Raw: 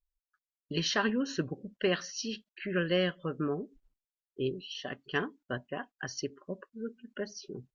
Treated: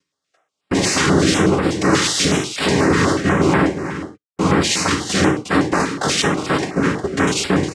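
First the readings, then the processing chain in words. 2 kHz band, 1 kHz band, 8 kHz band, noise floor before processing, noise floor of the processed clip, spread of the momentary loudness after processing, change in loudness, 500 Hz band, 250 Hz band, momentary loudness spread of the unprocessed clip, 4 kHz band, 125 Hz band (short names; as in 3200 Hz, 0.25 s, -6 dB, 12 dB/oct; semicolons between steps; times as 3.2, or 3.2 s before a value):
+16.5 dB, +21.5 dB, n/a, under -85 dBFS, -80 dBFS, 5 LU, +17.5 dB, +15.0 dB, +18.5 dB, 13 LU, +16.5 dB, +19.5 dB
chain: gate -55 dBFS, range -21 dB; dynamic EQ 370 Hz, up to +6 dB, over -47 dBFS, Q 3.5; sample leveller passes 5; limiter -17.5 dBFS, peak gain reduction 3.5 dB; sample leveller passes 5; upward compressor, threshold -22 dBFS; noise vocoder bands 3; air absorption 54 m; echo 0.359 s -10 dB; non-linear reverb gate 0.15 s falling, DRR 1 dB; stepped notch 8.2 Hz 690–6200 Hz; gain +2.5 dB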